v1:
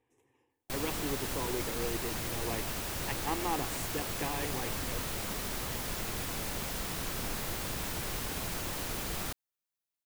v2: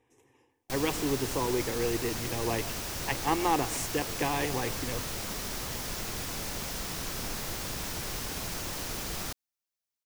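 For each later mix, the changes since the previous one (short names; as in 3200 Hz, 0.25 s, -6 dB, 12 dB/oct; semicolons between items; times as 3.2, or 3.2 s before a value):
speech +7.0 dB; master: add bell 5600 Hz +5 dB 0.7 oct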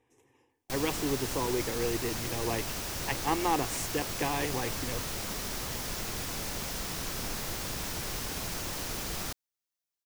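speech: send -11.5 dB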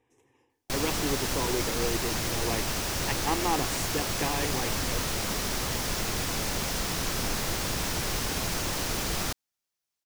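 background +6.5 dB; master: add high shelf 11000 Hz -5 dB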